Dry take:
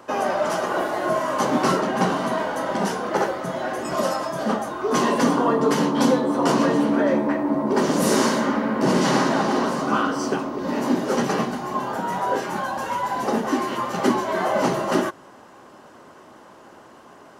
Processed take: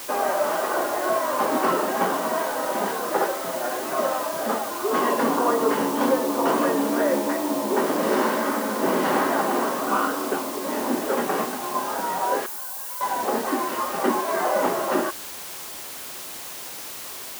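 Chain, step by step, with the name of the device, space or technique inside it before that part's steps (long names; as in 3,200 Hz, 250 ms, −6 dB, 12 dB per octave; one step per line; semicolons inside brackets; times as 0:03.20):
wax cylinder (band-pass filter 300–2,300 Hz; tape wow and flutter; white noise bed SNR 12 dB)
0:12.46–0:13.01: first-order pre-emphasis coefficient 0.9
high-pass filter 110 Hz 6 dB per octave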